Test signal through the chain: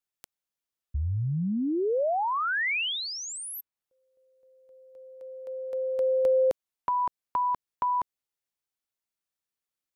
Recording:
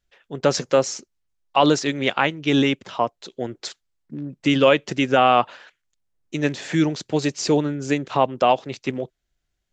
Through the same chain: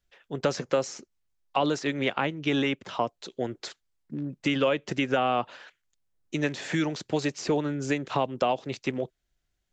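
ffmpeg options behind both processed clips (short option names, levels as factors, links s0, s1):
-filter_complex "[0:a]acrossover=split=550|2700[s0][s1][s2];[s0]acompressor=threshold=0.0562:ratio=4[s3];[s1]acompressor=threshold=0.0501:ratio=4[s4];[s2]acompressor=threshold=0.0126:ratio=4[s5];[s3][s4][s5]amix=inputs=3:normalize=0,volume=0.841"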